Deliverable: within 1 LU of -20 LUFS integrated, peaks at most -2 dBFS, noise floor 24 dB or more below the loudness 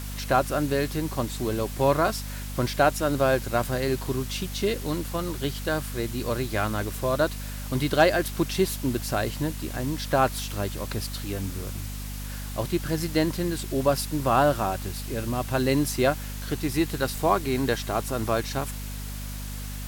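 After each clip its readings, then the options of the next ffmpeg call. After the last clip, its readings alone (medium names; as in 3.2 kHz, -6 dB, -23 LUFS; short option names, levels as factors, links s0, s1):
hum 50 Hz; highest harmonic 250 Hz; hum level -32 dBFS; noise floor -34 dBFS; noise floor target -51 dBFS; loudness -27.0 LUFS; peak level -7.5 dBFS; loudness target -20.0 LUFS
-> -af "bandreject=f=50:t=h:w=4,bandreject=f=100:t=h:w=4,bandreject=f=150:t=h:w=4,bandreject=f=200:t=h:w=4,bandreject=f=250:t=h:w=4"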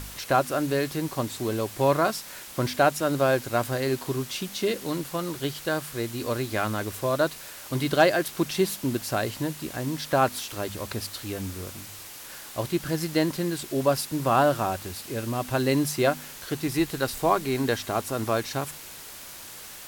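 hum not found; noise floor -42 dBFS; noise floor target -51 dBFS
-> -af "afftdn=nr=9:nf=-42"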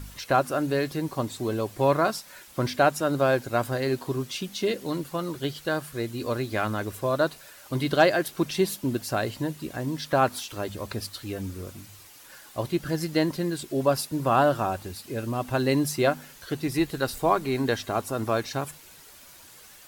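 noise floor -50 dBFS; noise floor target -51 dBFS
-> -af "afftdn=nr=6:nf=-50"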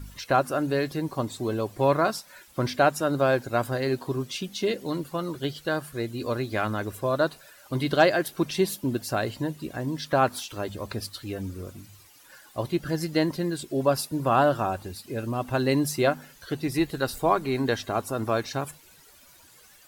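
noise floor -54 dBFS; loudness -27.0 LUFS; peak level -7.5 dBFS; loudness target -20.0 LUFS
-> -af "volume=2.24,alimiter=limit=0.794:level=0:latency=1"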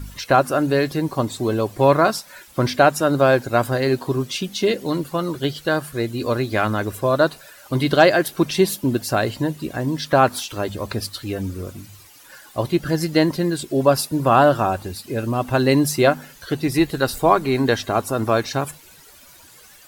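loudness -20.0 LUFS; peak level -2.0 dBFS; noise floor -47 dBFS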